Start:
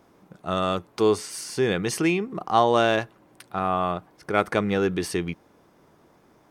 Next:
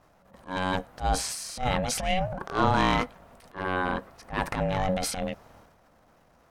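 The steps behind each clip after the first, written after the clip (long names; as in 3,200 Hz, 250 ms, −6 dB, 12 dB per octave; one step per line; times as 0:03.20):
ring modulation 370 Hz
transient designer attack −12 dB, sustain +8 dB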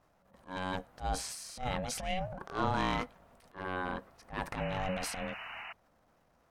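sound drawn into the spectrogram noise, 0:04.57–0:05.73, 620–3,000 Hz −36 dBFS
level −8.5 dB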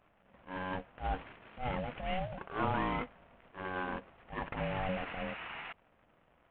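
variable-slope delta modulation 16 kbit/s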